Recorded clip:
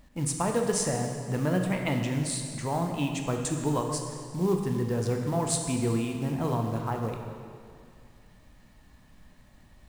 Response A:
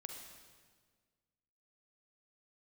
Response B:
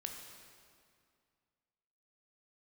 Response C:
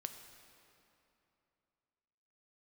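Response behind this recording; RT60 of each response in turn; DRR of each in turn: B; 1.6 s, 2.2 s, 2.9 s; 2.5 dB, 2.5 dB, 6.5 dB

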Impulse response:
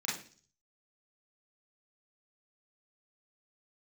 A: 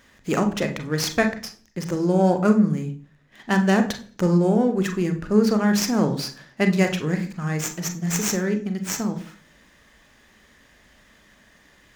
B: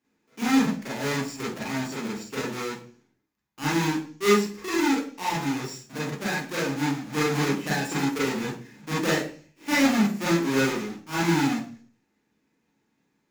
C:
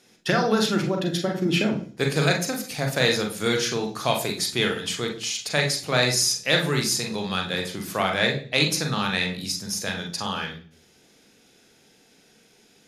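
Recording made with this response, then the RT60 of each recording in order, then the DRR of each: B; 0.45 s, 0.45 s, 0.45 s; 6.0 dB, -7.5 dB, 2.0 dB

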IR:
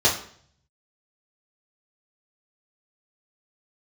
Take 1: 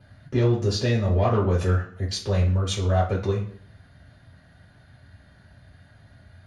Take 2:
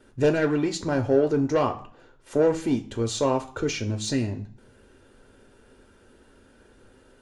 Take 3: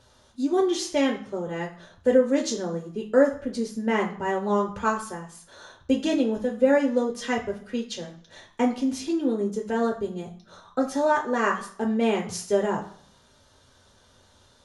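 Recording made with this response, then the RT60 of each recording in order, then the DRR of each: 1; 0.55 s, 0.55 s, 0.55 s; -8.0 dB, 5.5 dB, 0.0 dB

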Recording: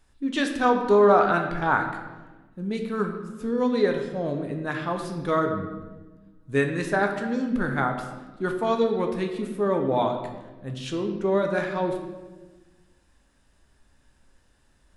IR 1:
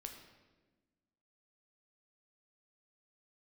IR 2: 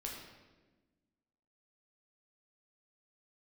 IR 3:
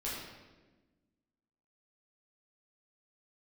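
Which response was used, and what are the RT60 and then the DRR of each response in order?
1; 1.3 s, 1.2 s, 1.2 s; 3.5 dB, -2.0 dB, -8.0 dB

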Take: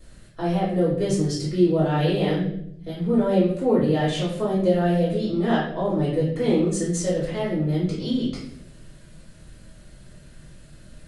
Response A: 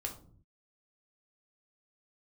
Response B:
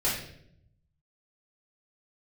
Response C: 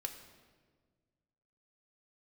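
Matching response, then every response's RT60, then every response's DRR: B; 0.50 s, 0.70 s, 1.6 s; 2.0 dB, -9.0 dB, 4.5 dB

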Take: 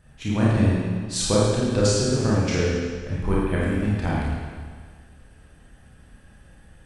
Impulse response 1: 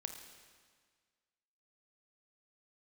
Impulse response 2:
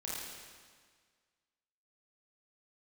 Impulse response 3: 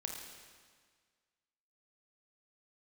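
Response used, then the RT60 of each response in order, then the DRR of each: 2; 1.7 s, 1.7 s, 1.7 s; 5.5 dB, -7.0 dB, 1.0 dB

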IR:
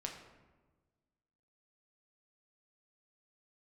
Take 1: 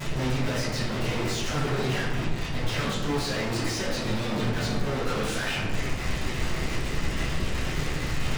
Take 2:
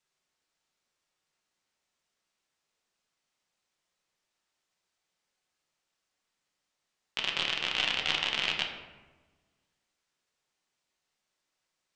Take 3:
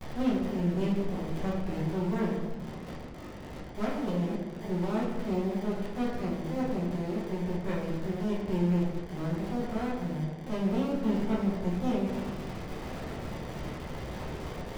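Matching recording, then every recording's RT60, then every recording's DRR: 2; 1.3 s, 1.3 s, 1.3 s; -15.5 dB, 1.0 dB, -7.5 dB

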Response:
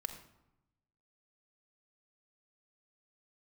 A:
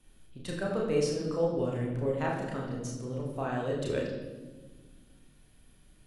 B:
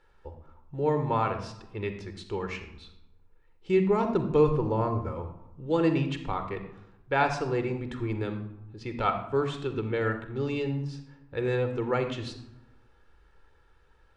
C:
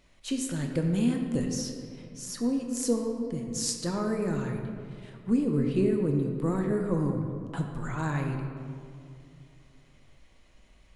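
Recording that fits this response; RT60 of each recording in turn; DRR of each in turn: B; 1.3 s, 0.90 s, 2.6 s; -3.0 dB, 7.5 dB, 2.5 dB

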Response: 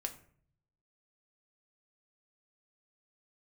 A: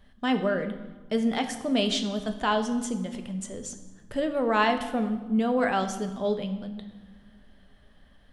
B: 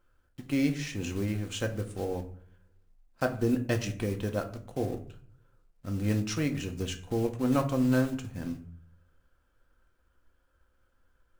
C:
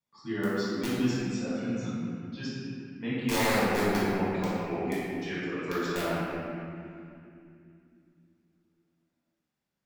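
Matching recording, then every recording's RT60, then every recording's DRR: B; 1.6 s, 0.55 s, 2.6 s; 6.5 dB, 4.0 dB, -10.0 dB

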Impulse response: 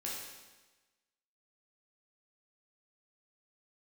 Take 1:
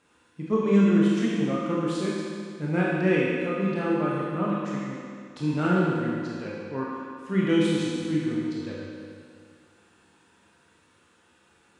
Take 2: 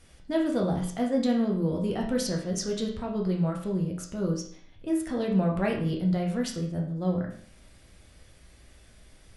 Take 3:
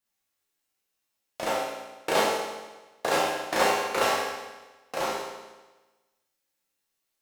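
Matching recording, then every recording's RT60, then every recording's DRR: 3; 2.2 s, 0.55 s, 1.2 s; -6.0 dB, -1.0 dB, -5.5 dB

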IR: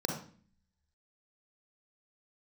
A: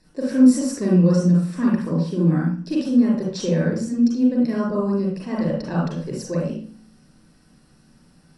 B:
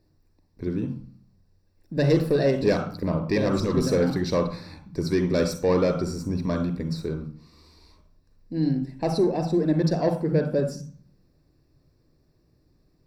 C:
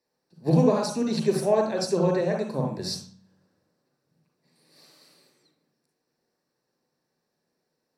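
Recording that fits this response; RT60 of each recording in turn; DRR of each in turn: C; 0.45 s, 0.45 s, 0.45 s; -4.5 dB, 6.0 dB, 1.0 dB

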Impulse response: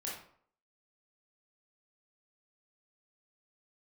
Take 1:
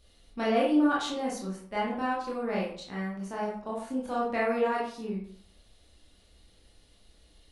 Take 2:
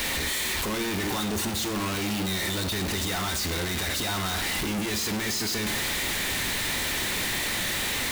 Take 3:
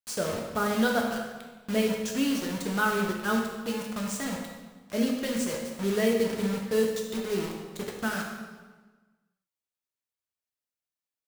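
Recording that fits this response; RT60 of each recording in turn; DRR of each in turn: 1; 0.60 s, 0.75 s, 1.3 s; -5.5 dB, 9.5 dB, 0.0 dB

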